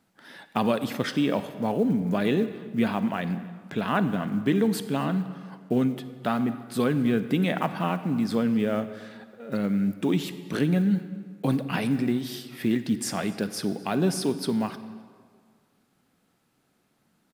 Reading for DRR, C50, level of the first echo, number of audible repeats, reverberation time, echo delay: 11.5 dB, 12.0 dB, -24.0 dB, 1, 1.9 s, 256 ms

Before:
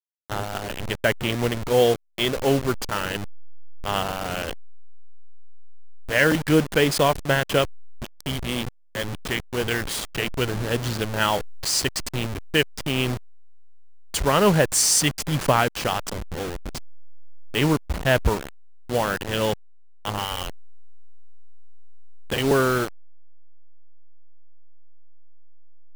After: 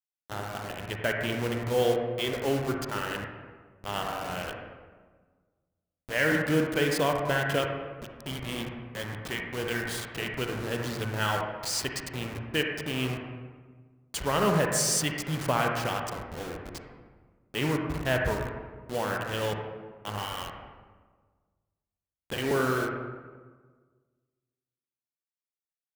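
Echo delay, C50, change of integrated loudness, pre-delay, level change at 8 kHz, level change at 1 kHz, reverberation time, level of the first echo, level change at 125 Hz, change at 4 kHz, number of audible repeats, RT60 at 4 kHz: no echo, 2.0 dB, -6.5 dB, 38 ms, -8.0 dB, -5.5 dB, 1.5 s, no echo, -6.0 dB, -7.5 dB, no echo, 0.95 s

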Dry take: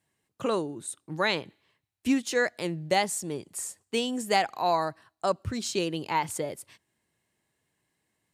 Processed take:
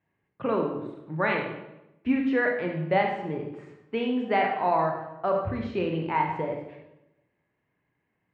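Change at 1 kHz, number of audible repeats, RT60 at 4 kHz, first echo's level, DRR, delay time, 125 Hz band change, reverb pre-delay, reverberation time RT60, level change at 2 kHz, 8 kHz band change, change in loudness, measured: +2.0 dB, no echo, 0.70 s, no echo, 1.0 dB, no echo, +4.5 dB, 25 ms, 0.90 s, +1.5 dB, under -35 dB, +1.5 dB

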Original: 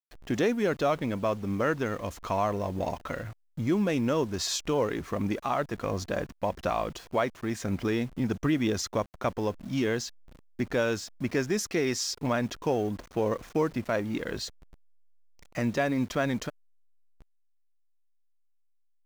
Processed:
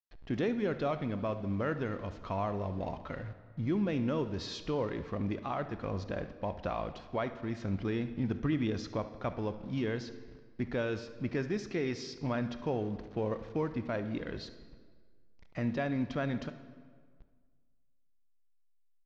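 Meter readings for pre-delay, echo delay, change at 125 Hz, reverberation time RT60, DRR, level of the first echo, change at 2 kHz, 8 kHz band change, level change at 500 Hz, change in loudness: 18 ms, 72 ms, -2.5 dB, 1.7 s, 10.0 dB, -16.5 dB, -7.5 dB, -19.0 dB, -6.5 dB, -5.5 dB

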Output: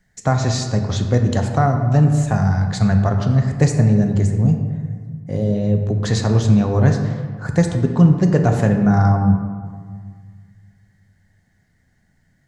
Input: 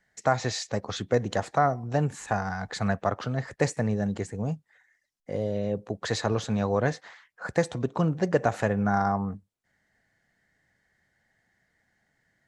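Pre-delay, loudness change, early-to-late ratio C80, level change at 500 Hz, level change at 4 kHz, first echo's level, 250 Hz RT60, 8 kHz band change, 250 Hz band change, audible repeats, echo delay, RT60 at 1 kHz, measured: 3 ms, +11.0 dB, 7.5 dB, +4.5 dB, +5.5 dB, no echo, 2.2 s, +7.5 dB, +12.5 dB, no echo, no echo, 1.8 s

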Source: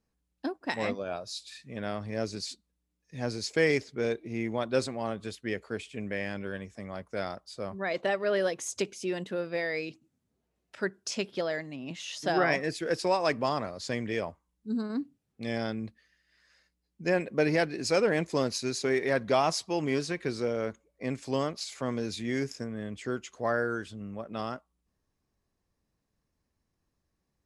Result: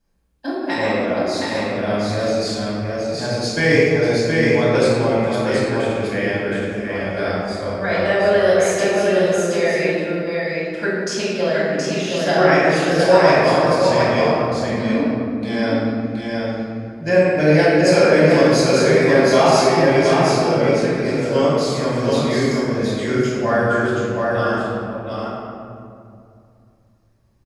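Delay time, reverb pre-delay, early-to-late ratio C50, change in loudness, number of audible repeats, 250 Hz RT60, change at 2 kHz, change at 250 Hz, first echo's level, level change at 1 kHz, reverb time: 721 ms, 3 ms, -5.0 dB, +14.0 dB, 1, 3.1 s, +13.5 dB, +14.5 dB, -3.5 dB, +14.0 dB, 2.4 s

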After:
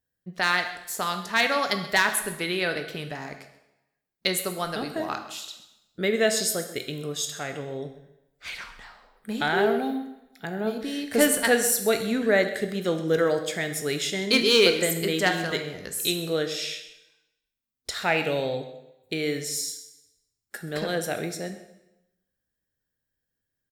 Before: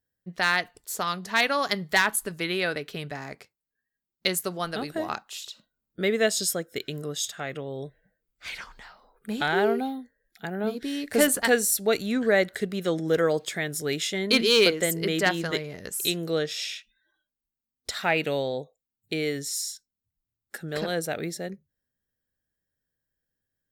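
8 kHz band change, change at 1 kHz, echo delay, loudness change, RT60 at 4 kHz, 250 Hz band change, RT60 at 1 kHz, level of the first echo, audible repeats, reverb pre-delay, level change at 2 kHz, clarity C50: +1.0 dB, +1.0 dB, 131 ms, +1.0 dB, 0.85 s, +0.5 dB, 0.90 s, -17.5 dB, 1, 6 ms, +1.0 dB, 9.0 dB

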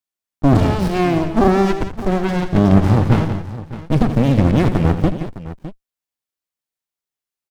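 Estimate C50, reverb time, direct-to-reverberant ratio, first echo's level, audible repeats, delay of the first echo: no reverb, no reverb, no reverb, -12.0 dB, 3, 83 ms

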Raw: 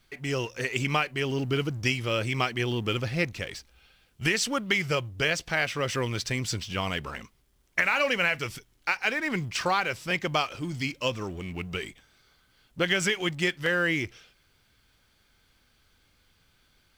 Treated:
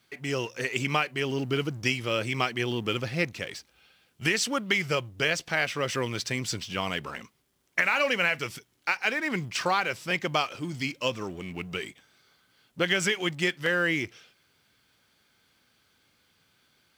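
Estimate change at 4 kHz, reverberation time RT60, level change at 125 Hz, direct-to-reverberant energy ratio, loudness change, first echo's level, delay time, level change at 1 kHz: 0.0 dB, no reverb, -3.0 dB, no reverb, 0.0 dB, no echo, no echo, 0.0 dB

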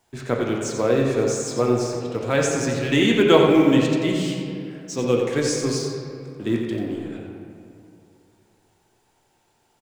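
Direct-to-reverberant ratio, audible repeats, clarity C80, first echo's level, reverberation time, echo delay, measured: -1.5 dB, 1, 2.0 dB, -7.5 dB, 2.5 s, 89 ms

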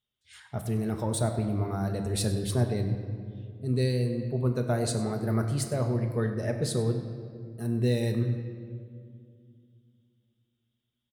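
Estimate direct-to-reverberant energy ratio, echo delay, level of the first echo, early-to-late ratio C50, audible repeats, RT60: 4.0 dB, 98 ms, -16.0 dB, 7.0 dB, 1, 2.2 s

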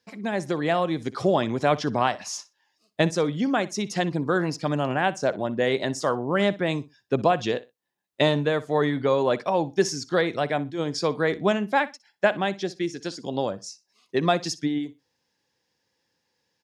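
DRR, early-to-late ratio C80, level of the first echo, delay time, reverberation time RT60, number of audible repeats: no reverb, no reverb, -18.5 dB, 61 ms, no reverb, 2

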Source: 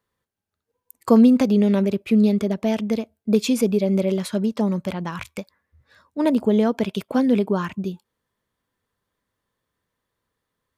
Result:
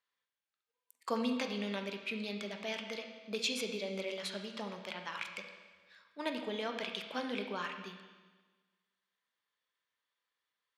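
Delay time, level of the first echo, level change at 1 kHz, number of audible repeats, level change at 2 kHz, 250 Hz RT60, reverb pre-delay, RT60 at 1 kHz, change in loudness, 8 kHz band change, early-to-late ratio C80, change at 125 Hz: no echo, no echo, -11.0 dB, no echo, -4.0 dB, 1.4 s, 12 ms, 1.4 s, -18.0 dB, -10.0 dB, 8.0 dB, -24.5 dB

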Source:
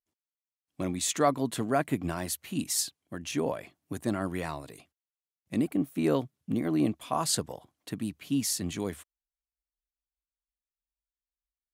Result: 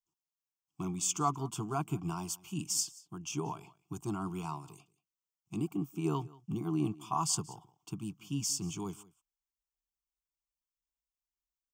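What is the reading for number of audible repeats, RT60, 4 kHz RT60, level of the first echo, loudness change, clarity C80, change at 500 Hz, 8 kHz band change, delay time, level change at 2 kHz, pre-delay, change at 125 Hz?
1, no reverb, no reverb, -22.0 dB, -5.0 dB, no reverb, -10.5 dB, -2.0 dB, 182 ms, -12.0 dB, no reverb, -1.0 dB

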